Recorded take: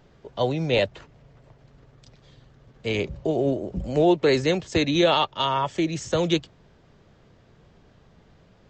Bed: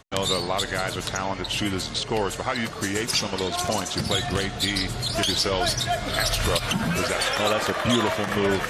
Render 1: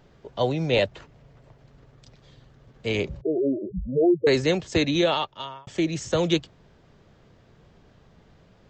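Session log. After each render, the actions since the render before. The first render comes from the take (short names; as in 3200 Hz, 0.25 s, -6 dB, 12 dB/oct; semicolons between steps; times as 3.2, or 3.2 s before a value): 3.21–4.27 spectral contrast raised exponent 3.7; 4.85–5.67 fade out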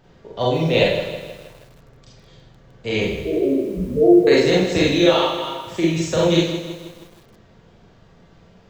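Schroeder reverb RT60 0.45 s, combs from 33 ms, DRR -4 dB; lo-fi delay 0.159 s, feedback 55%, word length 7-bit, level -10 dB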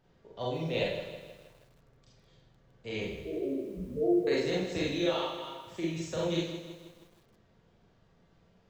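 gain -14.5 dB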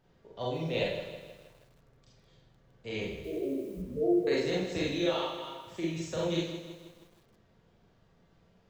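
3.24–3.82 high shelf 6500 Hz +8.5 dB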